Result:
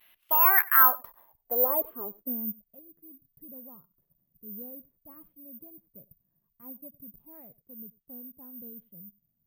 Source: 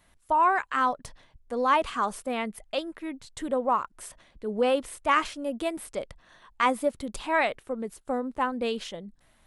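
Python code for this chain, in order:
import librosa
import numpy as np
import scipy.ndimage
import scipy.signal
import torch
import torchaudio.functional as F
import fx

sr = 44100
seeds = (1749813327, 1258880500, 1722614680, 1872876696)

p1 = fx.vibrato(x, sr, rate_hz=0.35, depth_cents=19.0)
p2 = fx.riaa(p1, sr, side='recording')
p3 = fx.filter_sweep_lowpass(p2, sr, from_hz=2800.0, to_hz=160.0, start_s=0.31, end_s=2.73, q=3.4)
p4 = p3 + fx.echo_single(p3, sr, ms=94, db=-22.5, dry=0)
p5 = (np.kron(scipy.signal.resample_poly(p4, 1, 3), np.eye(3)[0]) * 3)[:len(p4)]
y = F.gain(torch.from_numpy(p5), -5.5).numpy()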